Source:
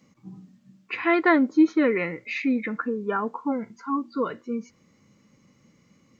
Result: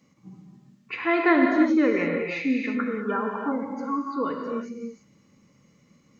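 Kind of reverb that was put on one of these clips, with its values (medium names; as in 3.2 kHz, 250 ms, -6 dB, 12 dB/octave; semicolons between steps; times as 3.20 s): gated-style reverb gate 370 ms flat, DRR 1 dB; trim -2.5 dB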